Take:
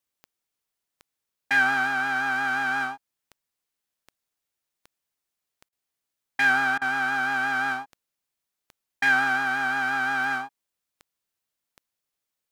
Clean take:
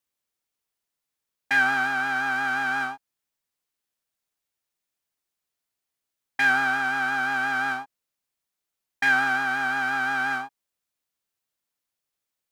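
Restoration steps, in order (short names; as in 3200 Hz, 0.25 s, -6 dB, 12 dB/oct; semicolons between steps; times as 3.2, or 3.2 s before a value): de-click; interpolate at 5.69/6.78, 34 ms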